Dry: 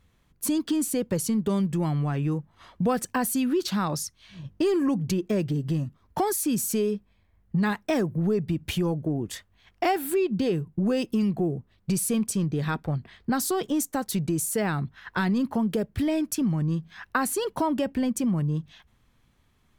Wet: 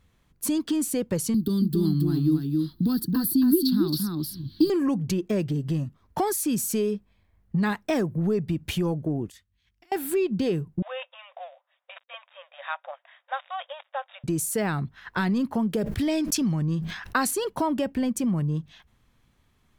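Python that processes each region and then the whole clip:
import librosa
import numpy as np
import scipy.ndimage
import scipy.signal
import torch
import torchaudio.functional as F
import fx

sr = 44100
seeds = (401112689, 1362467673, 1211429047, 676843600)

y = fx.chain(x, sr, fx.curve_eq(hz=(200.0, 320.0, 540.0, 1500.0, 2400.0, 4400.0, 6500.0, 14000.0), db=(0, 9, -24, -10, -24, 8, -20, 13)),
    fx.echo_single(ms=273, db=-4.0),
    fx.band_squash(depth_pct=40), at=(1.34, 4.7))
y = fx.chain(y, sr, fx.tone_stack(knobs='6-0-2'),
    fx.over_compress(threshold_db=-53.0, ratio=-0.5), at=(9.3, 9.92))
y = fx.chain(y, sr, fx.dead_time(dead_ms=0.089),
    fx.brickwall_bandpass(low_hz=520.0, high_hz=3800.0), at=(10.82, 14.24))
y = fx.chain(y, sr, fx.dynamic_eq(hz=5000.0, q=0.91, threshold_db=-49.0, ratio=4.0, max_db=8),
    fx.sustainer(db_per_s=57.0), at=(15.8, 17.31))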